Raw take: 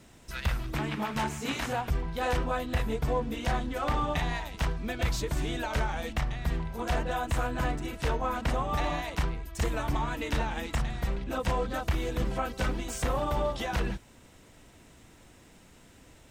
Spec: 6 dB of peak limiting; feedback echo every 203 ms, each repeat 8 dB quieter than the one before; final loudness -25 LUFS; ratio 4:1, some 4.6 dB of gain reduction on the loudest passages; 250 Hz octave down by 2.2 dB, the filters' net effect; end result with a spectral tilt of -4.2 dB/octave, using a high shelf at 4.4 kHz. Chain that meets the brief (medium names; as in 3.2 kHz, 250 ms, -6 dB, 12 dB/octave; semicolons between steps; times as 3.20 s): peaking EQ 250 Hz -3 dB; treble shelf 4.4 kHz +6 dB; compression 4:1, threshold -29 dBFS; peak limiter -25 dBFS; feedback delay 203 ms, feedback 40%, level -8 dB; trim +10 dB